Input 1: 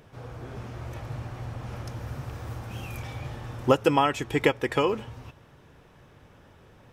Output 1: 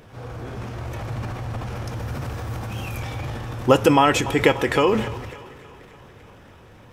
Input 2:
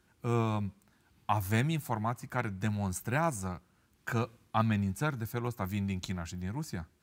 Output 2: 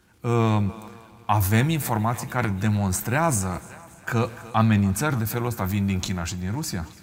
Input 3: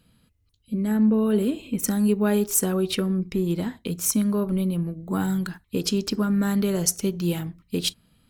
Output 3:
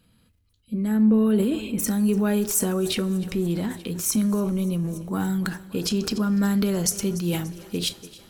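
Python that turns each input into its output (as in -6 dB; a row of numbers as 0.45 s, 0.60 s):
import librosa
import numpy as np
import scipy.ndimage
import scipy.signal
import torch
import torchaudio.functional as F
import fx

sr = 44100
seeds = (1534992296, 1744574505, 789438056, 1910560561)

y = fx.echo_thinned(x, sr, ms=290, feedback_pct=70, hz=290.0, wet_db=-23.0)
y = fx.transient(y, sr, attack_db=-1, sustain_db=8)
y = fx.rev_double_slope(y, sr, seeds[0], early_s=0.21, late_s=3.8, knee_db=-20, drr_db=14.0)
y = y * 10.0 ** (-24 / 20.0) / np.sqrt(np.mean(np.square(y)))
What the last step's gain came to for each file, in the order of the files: +5.5 dB, +8.0 dB, -1.0 dB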